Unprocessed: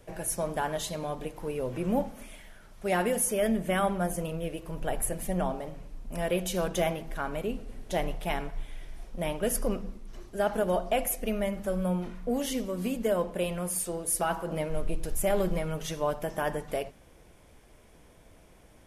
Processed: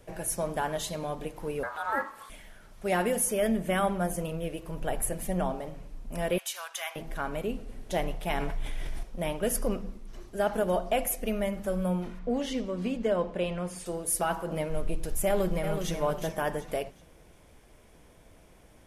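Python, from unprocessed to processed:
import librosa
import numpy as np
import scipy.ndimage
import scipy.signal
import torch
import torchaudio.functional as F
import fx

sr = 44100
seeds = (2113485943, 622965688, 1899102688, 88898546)

y = fx.ring_mod(x, sr, carrier_hz=1100.0, at=(1.63, 2.3))
y = fx.highpass(y, sr, hz=1000.0, slope=24, at=(6.38, 6.96))
y = fx.env_flatten(y, sr, amount_pct=70, at=(8.3, 9.03))
y = fx.lowpass(y, sr, hz=5000.0, slope=12, at=(12.19, 13.86))
y = fx.echo_throw(y, sr, start_s=15.26, length_s=0.69, ms=370, feedback_pct=30, wet_db=-7.0)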